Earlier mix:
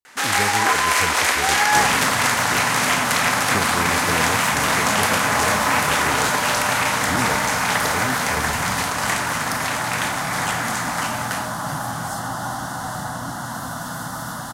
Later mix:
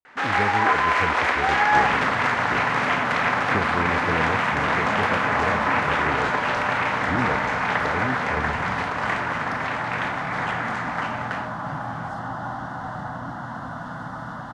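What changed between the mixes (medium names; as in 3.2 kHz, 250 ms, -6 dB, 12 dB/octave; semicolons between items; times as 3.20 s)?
second sound -3.0 dB; master: add low-pass 2.1 kHz 12 dB/octave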